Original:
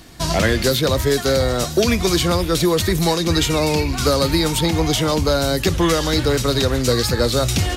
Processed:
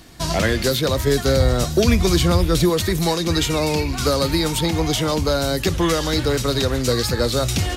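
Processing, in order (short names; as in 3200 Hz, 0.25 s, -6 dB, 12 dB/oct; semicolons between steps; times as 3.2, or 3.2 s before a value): 1.07–2.7 low shelf 160 Hz +9.5 dB; gain -2 dB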